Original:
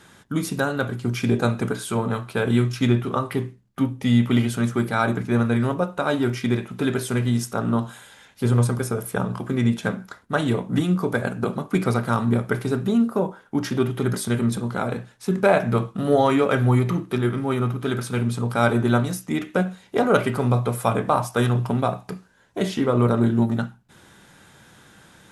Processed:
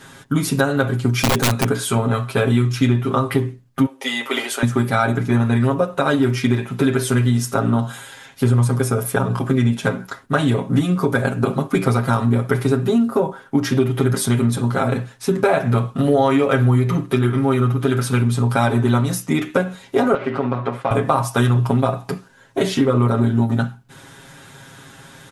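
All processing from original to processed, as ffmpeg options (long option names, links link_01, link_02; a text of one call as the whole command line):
ffmpeg -i in.wav -filter_complex "[0:a]asettb=1/sr,asplit=3[link_01][link_02][link_03];[link_01]atrim=end=1.184[link_04];[link_02]atrim=start=1.18:end=1.64,asetpts=PTS-STARTPTS,afade=type=in:duration=0.004:curve=qsin,afade=type=out:start_time=0.456:duration=0.004:curve=qsin,highshelf=frequency=3200:gain=6,aeval=exprs='(mod(5.31*val(0)+1,2)-1)/5.31':channel_layout=same[link_05];[link_03]atrim=start=1.636[link_06];[link_04][link_05]acrossfade=duration=0.004:curve1=hsin:curve2=qsin[link_07];[link_07][link_06]acrossfade=duration=0.004:curve1=qsin:curve2=hsin,asettb=1/sr,asplit=3[link_08][link_09][link_10];[link_08]atrim=end=3.864[link_11];[link_09]atrim=start=3.86:end=4.63,asetpts=PTS-STARTPTS,afade=type=in:duration=0.004:curve=qsin,afade=type=out:start_time=0.766:duration=0.004:curve=qsin,highpass=frequency=420:width=0.5412,highpass=frequency=420:width=1.3066,asplit=2[link_12][link_13];[link_13]adelay=15,volume=-13dB[link_14];[link_12][link_14]amix=inputs=2:normalize=0,atrim=end_sample=33957[link_15];[link_10]atrim=start=4.626[link_16];[link_11][link_15]acrossfade=duration=0.004:curve1=hsin:curve2=qsin[link_17];[link_17][link_16]acrossfade=duration=0.004:curve1=qsin:curve2=hsin,asettb=1/sr,asplit=3[link_18][link_19][link_20];[link_18]atrim=end=20.144[link_21];[link_19]atrim=start=20.14:end=20.91,asetpts=PTS-STARTPTS,afade=type=in:duration=0.004:curve=qsin,afade=type=out:start_time=0.766:duration=0.004:curve=qsin,acompressor=threshold=-22dB:ratio=3:attack=3.2:release=140:knee=1:detection=peak,aeval=exprs='sgn(val(0))*max(abs(val(0))-0.015,0)':channel_layout=same,highpass=200,lowpass=2600[link_22];[link_20]atrim=start=20.906[link_23];[link_21][link_22]acrossfade=duration=0.004:curve1=hsin:curve2=qsin[link_24];[link_24][link_23]acrossfade=duration=0.004:curve1=qsin:curve2=hsin,aecho=1:1:7.4:0.98,acompressor=threshold=-20dB:ratio=3,volume=5.5dB" out.wav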